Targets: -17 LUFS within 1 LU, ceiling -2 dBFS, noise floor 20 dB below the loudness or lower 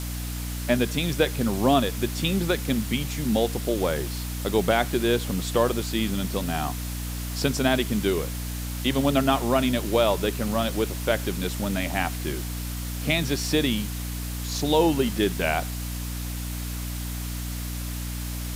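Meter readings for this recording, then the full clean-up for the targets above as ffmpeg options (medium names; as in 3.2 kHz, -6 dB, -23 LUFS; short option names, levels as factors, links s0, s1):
hum 60 Hz; highest harmonic 300 Hz; hum level -29 dBFS; noise floor -32 dBFS; noise floor target -46 dBFS; loudness -26.0 LUFS; peak level -7.5 dBFS; loudness target -17.0 LUFS
-> -af "bandreject=f=60:t=h:w=4,bandreject=f=120:t=h:w=4,bandreject=f=180:t=h:w=4,bandreject=f=240:t=h:w=4,bandreject=f=300:t=h:w=4"
-af "afftdn=nr=14:nf=-32"
-af "volume=2.82,alimiter=limit=0.794:level=0:latency=1"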